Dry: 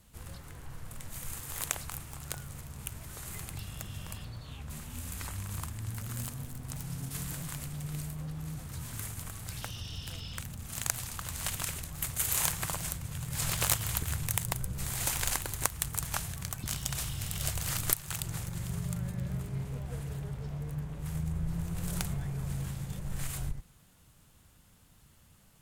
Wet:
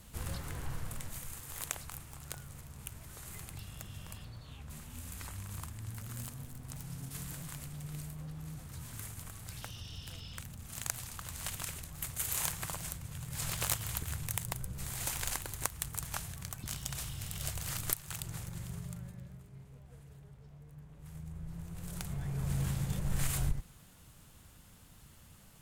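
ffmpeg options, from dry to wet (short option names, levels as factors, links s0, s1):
-af "volume=18.8,afade=t=out:st=0.66:d=0.62:silence=0.281838,afade=t=out:st=18.54:d=0.83:silence=0.281838,afade=t=in:st=20.7:d=1.31:silence=0.375837,afade=t=in:st=22.01:d=0.7:silence=0.281838"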